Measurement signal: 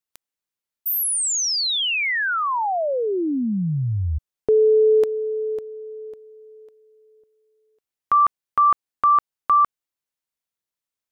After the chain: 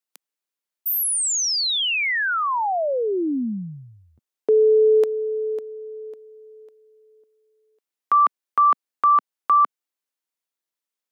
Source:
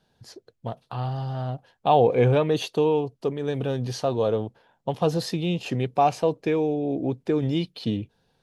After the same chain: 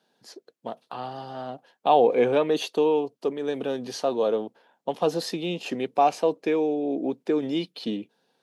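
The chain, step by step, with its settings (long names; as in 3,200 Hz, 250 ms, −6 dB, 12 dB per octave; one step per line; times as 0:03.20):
high-pass filter 220 Hz 24 dB per octave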